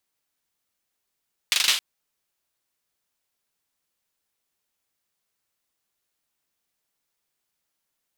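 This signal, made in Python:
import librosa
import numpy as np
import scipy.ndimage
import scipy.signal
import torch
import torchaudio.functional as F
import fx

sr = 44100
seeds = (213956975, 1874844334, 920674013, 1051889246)

y = fx.drum_clap(sr, seeds[0], length_s=0.27, bursts=5, spacing_ms=40, hz=3300.0, decay_s=0.43)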